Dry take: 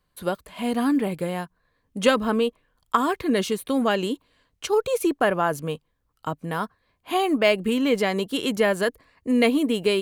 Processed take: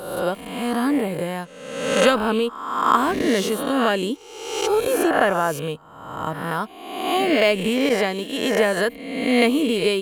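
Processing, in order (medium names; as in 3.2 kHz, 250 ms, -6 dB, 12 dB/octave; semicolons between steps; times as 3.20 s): reverse spectral sustain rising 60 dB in 1.06 s; 7.89–8.77 s: expander -18 dBFS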